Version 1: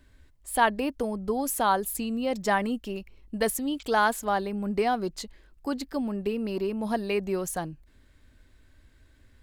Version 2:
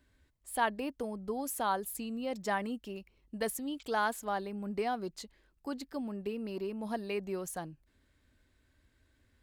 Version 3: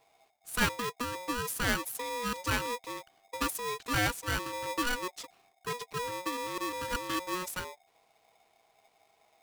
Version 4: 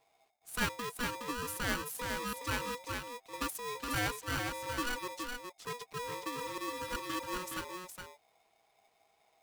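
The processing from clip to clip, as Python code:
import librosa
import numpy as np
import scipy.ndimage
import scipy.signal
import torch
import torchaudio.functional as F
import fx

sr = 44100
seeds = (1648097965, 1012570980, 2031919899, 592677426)

y1 = fx.highpass(x, sr, hz=67.0, slope=6)
y1 = y1 * librosa.db_to_amplitude(-8.0)
y2 = y1 * np.sign(np.sin(2.0 * np.pi * 730.0 * np.arange(len(y1)) / sr))
y2 = y2 * librosa.db_to_amplitude(2.0)
y3 = y2 + 10.0 ** (-5.0 / 20.0) * np.pad(y2, (int(417 * sr / 1000.0), 0))[:len(y2)]
y3 = y3 * librosa.db_to_amplitude(-5.0)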